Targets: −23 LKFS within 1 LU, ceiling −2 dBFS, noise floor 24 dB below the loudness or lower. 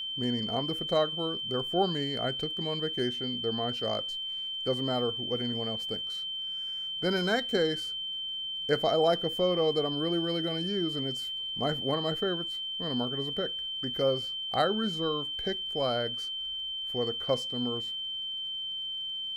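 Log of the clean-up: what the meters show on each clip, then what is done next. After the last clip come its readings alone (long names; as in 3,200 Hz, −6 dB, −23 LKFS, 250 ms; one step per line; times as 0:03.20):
crackle rate 59 per second; interfering tone 3,100 Hz; level of the tone −33 dBFS; integrated loudness −30.0 LKFS; sample peak −12.5 dBFS; target loudness −23.0 LKFS
→ click removal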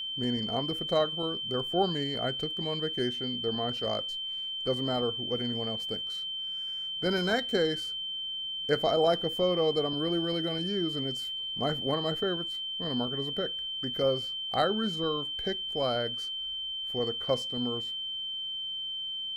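crackle rate 0.31 per second; interfering tone 3,100 Hz; level of the tone −33 dBFS
→ notch filter 3,100 Hz, Q 30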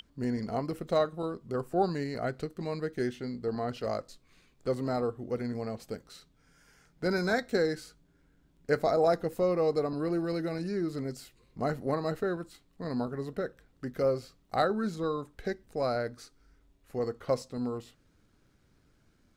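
interfering tone none found; integrated loudness −32.5 LKFS; sample peak −13.0 dBFS; target loudness −23.0 LKFS
→ level +9.5 dB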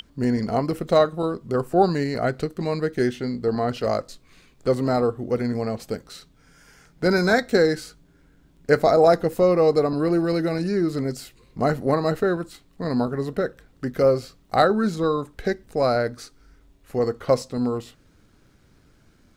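integrated loudness −23.0 LKFS; sample peak −3.5 dBFS; background noise floor −58 dBFS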